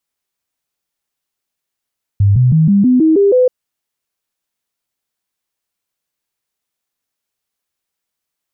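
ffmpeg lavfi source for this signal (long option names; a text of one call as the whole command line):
ffmpeg -f lavfi -i "aevalsrc='0.473*clip(min(mod(t,0.16),0.16-mod(t,0.16))/0.005,0,1)*sin(2*PI*100*pow(2,floor(t/0.16)/3)*mod(t,0.16))':duration=1.28:sample_rate=44100" out.wav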